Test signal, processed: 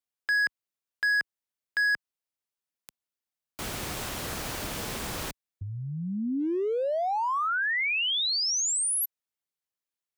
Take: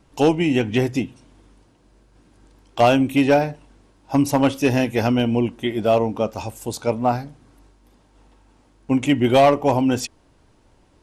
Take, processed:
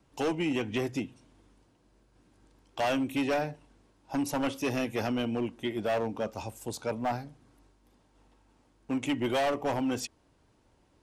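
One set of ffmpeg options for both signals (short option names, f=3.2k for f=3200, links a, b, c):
-filter_complex "[0:a]highpass=f=44:p=1,acrossover=split=240|3000[a][b][c];[a]acompressor=threshold=-28dB:ratio=4[d];[d][b][c]amix=inputs=3:normalize=0,acrossover=split=2600[e][f];[e]asoftclip=type=hard:threshold=-16.5dB[g];[g][f]amix=inputs=2:normalize=0,volume=-8.5dB"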